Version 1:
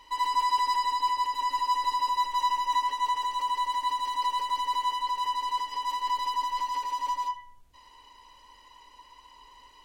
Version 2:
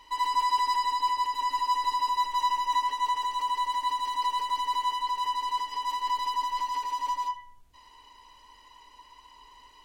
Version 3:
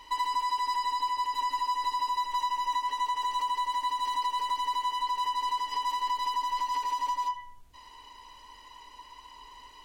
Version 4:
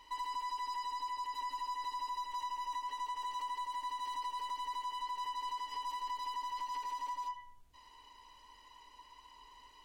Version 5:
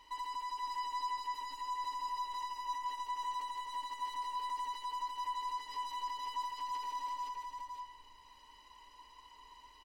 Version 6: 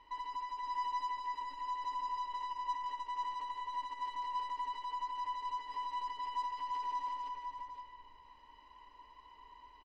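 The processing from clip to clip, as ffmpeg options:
ffmpeg -i in.wav -af "bandreject=frequency=530:width=12" out.wav
ffmpeg -i in.wav -af "acompressor=threshold=-30dB:ratio=6,volume=3.5dB" out.wav
ffmpeg -i in.wav -af "aeval=exprs='(tanh(15.8*val(0)+0.15)-tanh(0.15))/15.8':channel_layout=same,volume=-8dB" out.wav
ffmpeg -i in.wav -af "aecho=1:1:519:0.631,volume=-1.5dB" out.wav
ffmpeg -i in.wav -filter_complex "[0:a]asplit=2[link_01][link_02];[link_02]adelay=100,highpass=300,lowpass=3400,asoftclip=type=hard:threshold=-39dB,volume=-7dB[link_03];[link_01][link_03]amix=inputs=2:normalize=0,adynamicsmooth=sensitivity=5:basefreq=2600,volume=1dB" out.wav

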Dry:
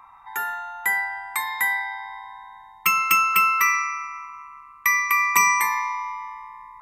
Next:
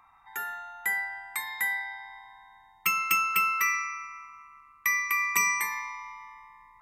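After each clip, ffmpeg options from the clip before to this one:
ffmpeg -i in.wav -af "equalizer=frequency=990:width=3:gain=-8.5,volume=-5.5dB" out.wav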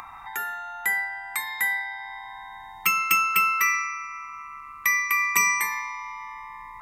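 ffmpeg -i in.wav -af "acompressor=mode=upward:threshold=-34dB:ratio=2.5,volume=4dB" out.wav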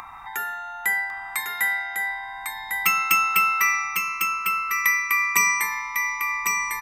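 ffmpeg -i in.wav -af "aecho=1:1:1101:0.562,volume=1.5dB" out.wav

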